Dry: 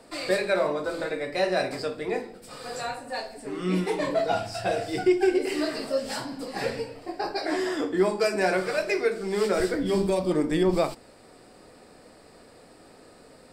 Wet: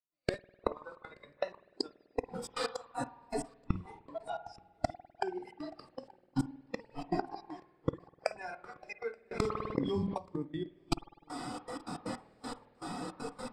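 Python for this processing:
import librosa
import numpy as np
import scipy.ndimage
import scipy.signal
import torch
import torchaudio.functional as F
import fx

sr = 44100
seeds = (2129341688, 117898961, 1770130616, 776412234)

p1 = fx.octave_divider(x, sr, octaves=1, level_db=-3.0)
p2 = fx.step_gate(p1, sr, bpm=158, pattern='...x...xxx.x.x.x', floor_db=-60.0, edge_ms=4.5)
p3 = fx.gate_flip(p2, sr, shuts_db=-27.0, range_db=-29)
p4 = fx.air_absorb(p3, sr, metres=51.0)
p5 = p4 + fx.echo_single(p4, sr, ms=878, db=-21.5, dry=0)
p6 = fx.rider(p5, sr, range_db=4, speed_s=0.5)
p7 = fx.rev_spring(p6, sr, rt60_s=1.7, pass_ms=(50,), chirp_ms=75, drr_db=9.5)
p8 = fx.noise_reduce_blind(p7, sr, reduce_db=13)
p9 = fx.env_flatten(p8, sr, amount_pct=70, at=(9.31, 10.18))
y = F.gain(torch.from_numpy(p9), 12.5).numpy()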